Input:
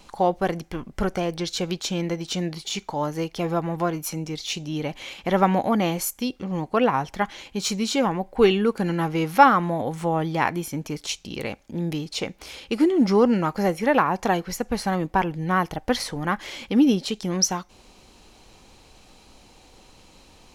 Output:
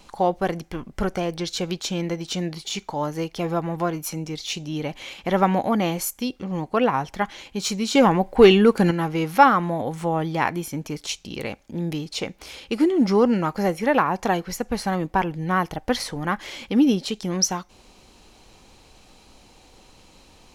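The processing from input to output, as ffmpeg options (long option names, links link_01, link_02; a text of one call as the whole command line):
ffmpeg -i in.wav -filter_complex "[0:a]asettb=1/sr,asplit=3[link_01][link_02][link_03];[link_01]atrim=end=7.954[link_04];[link_02]atrim=start=7.95:end=8.91,asetpts=PTS-STARTPTS,afade=type=in:duration=0.004:curve=qsin,afade=type=out:start_time=0.956:duration=0.004:curve=qsin,acontrast=70[link_05];[link_03]atrim=start=8.906[link_06];[link_04][link_05]acrossfade=duration=0.004:curve1=hsin:curve2=qsin[link_07];[link_07][link_06]acrossfade=duration=0.004:curve1=qsin:curve2=hsin" out.wav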